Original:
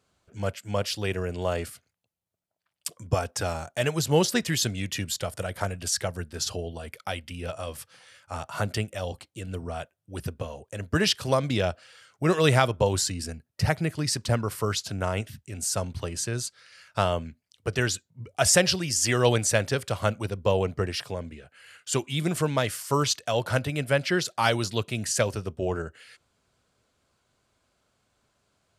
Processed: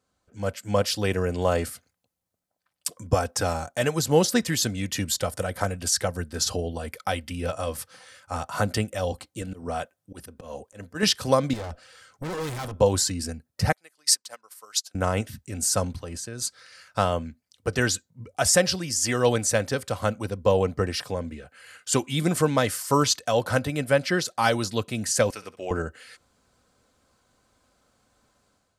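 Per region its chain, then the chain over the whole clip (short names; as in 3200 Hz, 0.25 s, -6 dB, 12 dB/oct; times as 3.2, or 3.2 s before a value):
9.42–11.03 HPF 140 Hz 6 dB/oct + auto swell 0.161 s
11.53–12.77 low shelf 120 Hz +7 dB + tube stage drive 34 dB, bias 0.4
13.72–14.95 HPF 710 Hz + high shelf 3000 Hz +9 dB + upward expander 2.5:1, over -37 dBFS
15.96–16.42 transient shaper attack +3 dB, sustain -4 dB + level quantiser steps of 13 dB
25.3–25.71 HPF 1100 Hz 6 dB/oct + bell 2300 Hz +8.5 dB 0.59 oct + flutter echo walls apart 11.3 m, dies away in 0.25 s
whole clip: bell 2800 Hz -5 dB 0.88 oct; comb 3.9 ms, depth 33%; AGC gain up to 10 dB; gain -4.5 dB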